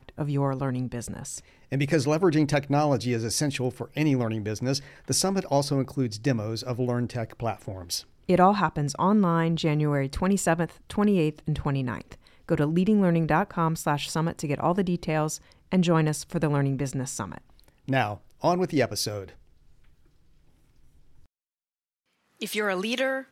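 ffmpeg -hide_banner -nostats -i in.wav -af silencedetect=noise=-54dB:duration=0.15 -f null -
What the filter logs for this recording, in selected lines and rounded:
silence_start: 21.26
silence_end: 22.37 | silence_duration: 1.11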